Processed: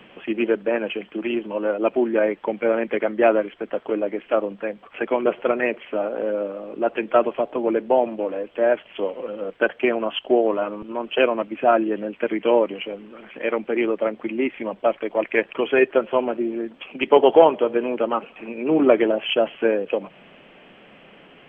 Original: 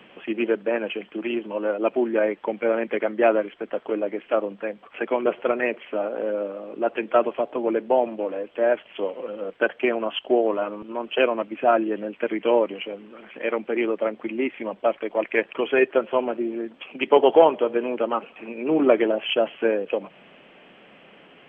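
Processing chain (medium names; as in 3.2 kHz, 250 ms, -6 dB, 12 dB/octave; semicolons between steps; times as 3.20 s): bass shelf 91 Hz +10 dB; trim +1.5 dB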